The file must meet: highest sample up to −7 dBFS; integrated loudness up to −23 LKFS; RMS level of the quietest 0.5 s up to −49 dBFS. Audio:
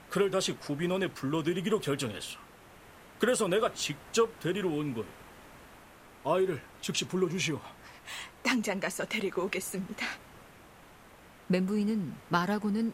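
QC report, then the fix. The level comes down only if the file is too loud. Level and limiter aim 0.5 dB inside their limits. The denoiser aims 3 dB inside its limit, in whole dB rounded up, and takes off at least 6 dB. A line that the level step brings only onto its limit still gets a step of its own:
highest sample −11.5 dBFS: in spec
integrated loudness −31.5 LKFS: in spec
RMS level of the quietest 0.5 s −55 dBFS: in spec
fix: no processing needed

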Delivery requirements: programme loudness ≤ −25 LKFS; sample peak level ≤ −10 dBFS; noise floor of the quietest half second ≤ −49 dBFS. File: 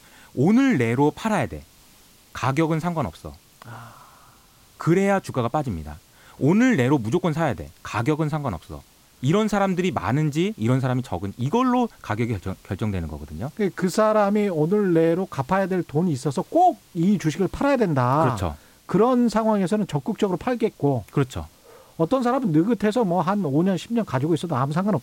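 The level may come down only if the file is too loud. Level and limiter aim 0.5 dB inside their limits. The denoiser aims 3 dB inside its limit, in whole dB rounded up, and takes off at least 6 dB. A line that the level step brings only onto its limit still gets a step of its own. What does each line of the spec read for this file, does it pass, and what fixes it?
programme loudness −22.5 LKFS: out of spec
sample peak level −9.0 dBFS: out of spec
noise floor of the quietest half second −53 dBFS: in spec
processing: level −3 dB

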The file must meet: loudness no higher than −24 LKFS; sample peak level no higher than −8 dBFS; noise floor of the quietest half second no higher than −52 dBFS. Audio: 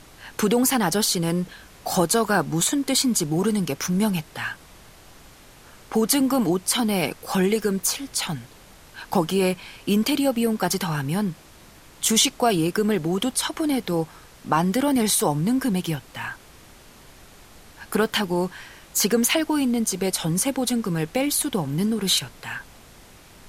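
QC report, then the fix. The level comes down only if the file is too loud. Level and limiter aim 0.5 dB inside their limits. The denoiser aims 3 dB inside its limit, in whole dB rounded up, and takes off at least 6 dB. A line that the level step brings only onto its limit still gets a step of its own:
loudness −22.5 LKFS: out of spec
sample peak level −5.5 dBFS: out of spec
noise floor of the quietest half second −48 dBFS: out of spec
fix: broadband denoise 6 dB, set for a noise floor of −48 dBFS
level −2 dB
brickwall limiter −8.5 dBFS

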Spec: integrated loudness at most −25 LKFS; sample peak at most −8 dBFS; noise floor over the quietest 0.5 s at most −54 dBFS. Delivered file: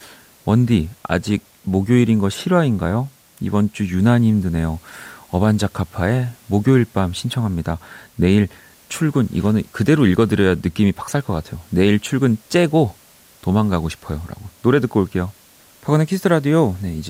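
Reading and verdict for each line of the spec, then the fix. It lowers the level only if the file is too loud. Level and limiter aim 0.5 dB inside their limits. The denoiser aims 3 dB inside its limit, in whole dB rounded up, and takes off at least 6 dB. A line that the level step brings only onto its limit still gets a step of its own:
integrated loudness −18.5 LKFS: out of spec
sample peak −3.0 dBFS: out of spec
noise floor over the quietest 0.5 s −49 dBFS: out of spec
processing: level −7 dB

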